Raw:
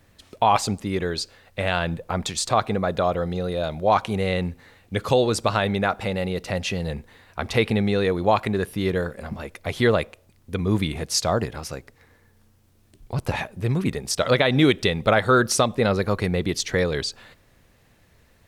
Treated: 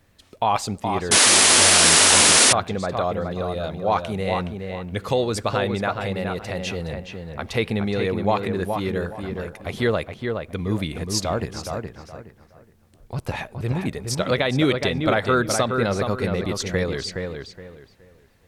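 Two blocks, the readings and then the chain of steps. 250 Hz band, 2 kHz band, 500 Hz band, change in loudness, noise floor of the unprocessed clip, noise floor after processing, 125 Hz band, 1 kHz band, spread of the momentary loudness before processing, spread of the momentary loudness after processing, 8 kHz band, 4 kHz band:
-1.0 dB, +3.5 dB, -1.0 dB, +3.5 dB, -59 dBFS, -55 dBFS, -1.0 dB, 0.0 dB, 12 LU, 20 LU, +13.5 dB, +7.5 dB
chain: filtered feedback delay 419 ms, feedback 27%, low-pass 2.7 kHz, level -5 dB; painted sound noise, 1.11–2.53 s, 210–11000 Hz -12 dBFS; trim -2.5 dB

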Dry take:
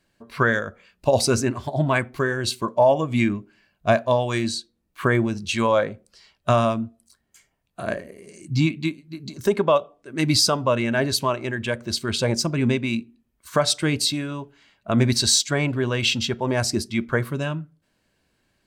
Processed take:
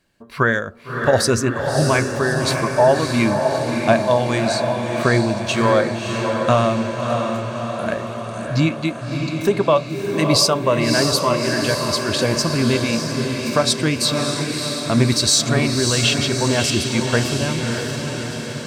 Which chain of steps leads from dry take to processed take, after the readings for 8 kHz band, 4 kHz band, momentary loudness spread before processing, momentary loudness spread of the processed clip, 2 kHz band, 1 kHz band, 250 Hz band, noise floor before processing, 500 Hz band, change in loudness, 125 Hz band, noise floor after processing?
+4.5 dB, +4.5 dB, 12 LU, 9 LU, +4.5 dB, +4.5 dB, +4.5 dB, -71 dBFS, +4.5 dB, +3.5 dB, +4.5 dB, -30 dBFS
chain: echo that smears into a reverb 617 ms, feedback 63%, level -4.5 dB; trim +2.5 dB

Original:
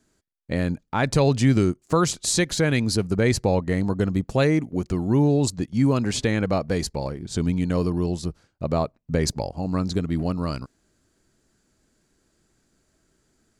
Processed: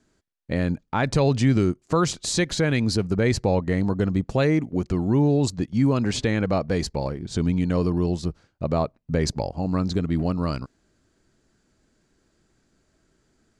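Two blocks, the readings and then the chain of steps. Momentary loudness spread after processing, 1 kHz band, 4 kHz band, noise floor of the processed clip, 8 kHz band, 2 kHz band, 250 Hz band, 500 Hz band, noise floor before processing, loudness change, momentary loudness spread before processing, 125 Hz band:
7 LU, -0.5 dB, -1.0 dB, -68 dBFS, -4.0 dB, -1.0 dB, 0.0 dB, -0.5 dB, -69 dBFS, -0.5 dB, 8 LU, 0.0 dB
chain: in parallel at -2 dB: peak limiter -16 dBFS, peak gain reduction 9 dB; on the sum: distance through air 56 m; trim -3.5 dB

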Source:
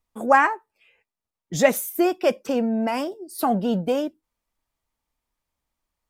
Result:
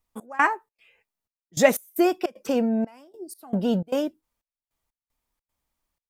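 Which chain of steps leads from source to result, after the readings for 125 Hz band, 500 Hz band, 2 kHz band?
-1.0 dB, -2.0 dB, -2.5 dB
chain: treble shelf 9.4 kHz +4.5 dB; trance gate "xx..xxx.xxxxx..." 153 bpm -24 dB

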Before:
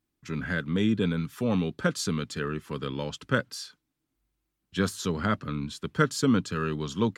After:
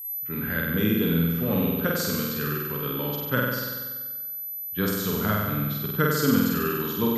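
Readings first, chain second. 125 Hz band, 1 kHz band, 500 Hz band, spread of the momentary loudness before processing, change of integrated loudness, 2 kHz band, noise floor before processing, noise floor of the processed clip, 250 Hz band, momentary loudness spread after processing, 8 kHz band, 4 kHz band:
+3.0 dB, +2.5 dB, +3.0 dB, 10 LU, +3.5 dB, +3.0 dB, -82 dBFS, -34 dBFS, +3.0 dB, 8 LU, +2.0 dB, +2.5 dB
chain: level-controlled noise filter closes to 1.2 kHz, open at -25 dBFS; whistle 12 kHz -33 dBFS; flutter echo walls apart 8.2 m, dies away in 1.4 s; trim -1.5 dB

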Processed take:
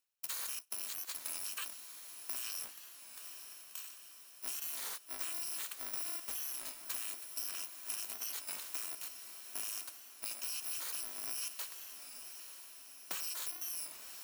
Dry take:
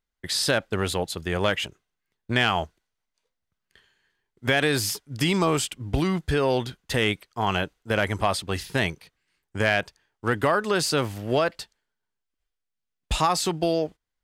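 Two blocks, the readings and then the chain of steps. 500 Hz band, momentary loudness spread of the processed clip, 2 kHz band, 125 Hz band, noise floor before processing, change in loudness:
-35.0 dB, 10 LU, -23.0 dB, under -40 dB, -83 dBFS, -14.5 dB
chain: bit-reversed sample order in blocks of 128 samples; high-pass 660 Hz 12 dB/octave; reverse; upward compressor, threshold -28 dBFS; reverse; peak limiter -18.5 dBFS, peak gain reduction 9 dB; compression 6:1, threshold -35 dBFS, peak gain reduction 11 dB; ring modulator 200 Hz; on a send: echo that smears into a reverb 917 ms, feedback 56%, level -9 dB; on the sum: warped record 33 1/3 rpm, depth 100 cents

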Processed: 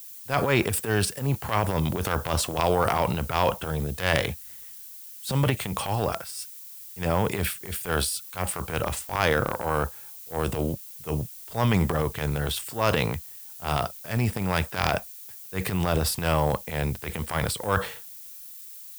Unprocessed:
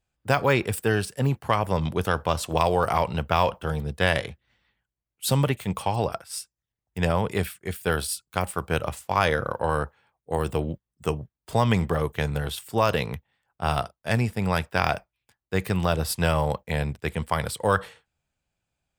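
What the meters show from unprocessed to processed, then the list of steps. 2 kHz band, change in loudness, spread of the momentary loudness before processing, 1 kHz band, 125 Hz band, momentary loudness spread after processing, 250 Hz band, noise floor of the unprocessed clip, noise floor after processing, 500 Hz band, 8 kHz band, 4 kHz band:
-1.0 dB, -1.0 dB, 8 LU, -2.0 dB, -0.5 dB, 14 LU, -0.5 dB, under -85 dBFS, -43 dBFS, -1.5 dB, +3.5 dB, +1.0 dB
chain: transient shaper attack -12 dB, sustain +8 dB; added noise violet -43 dBFS

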